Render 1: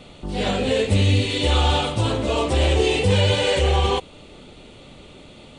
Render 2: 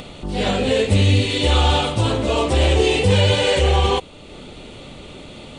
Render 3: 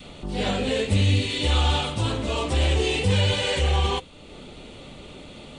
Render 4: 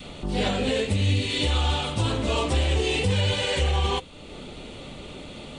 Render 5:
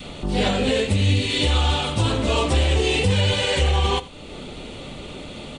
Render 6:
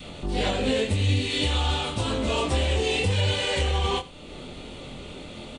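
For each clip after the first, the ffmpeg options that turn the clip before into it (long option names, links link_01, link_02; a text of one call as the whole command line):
ffmpeg -i in.wav -af "acompressor=mode=upward:threshold=-33dB:ratio=2.5,volume=2.5dB" out.wav
ffmpeg -i in.wav -af "adynamicequalizer=threshold=0.0251:dfrequency=520:dqfactor=0.83:tfrequency=520:tqfactor=0.83:attack=5:release=100:ratio=0.375:range=2.5:mode=cutabove:tftype=bell,flanger=delay=3.8:depth=1.3:regen=-81:speed=1.9:shape=sinusoidal" out.wav
ffmpeg -i in.wav -af "alimiter=limit=-16.5dB:level=0:latency=1:release=324,volume=2.5dB" out.wav
ffmpeg -i in.wav -af "aecho=1:1:86:0.106,volume=4dB" out.wav
ffmpeg -i in.wav -filter_complex "[0:a]asplit=2[link_01][link_02];[link_02]adelay=23,volume=-6dB[link_03];[link_01][link_03]amix=inputs=2:normalize=0,volume=-5dB" out.wav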